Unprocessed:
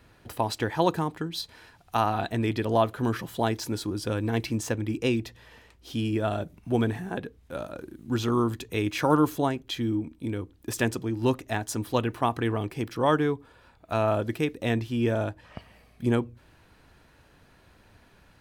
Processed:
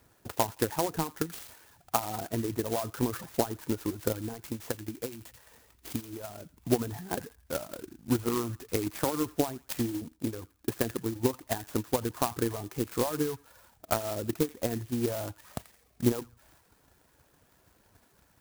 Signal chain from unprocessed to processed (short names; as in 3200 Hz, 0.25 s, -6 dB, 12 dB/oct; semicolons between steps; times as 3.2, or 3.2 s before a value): HPF 42 Hz; low shelf 200 Hz -9.5 dB; 4.28–6.58 compressor 6:1, threshold -35 dBFS, peak gain reduction 12 dB; limiter -17.5 dBFS, peak gain reduction 8 dB; low shelf 98 Hz +7.5 dB; treble ducked by the level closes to 1300 Hz, closed at -27.5 dBFS; LPF 7400 Hz; transient shaper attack +11 dB, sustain +7 dB; reverb removal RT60 0.52 s; thin delay 85 ms, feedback 30%, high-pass 2600 Hz, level -5 dB; clock jitter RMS 0.1 ms; gain -4.5 dB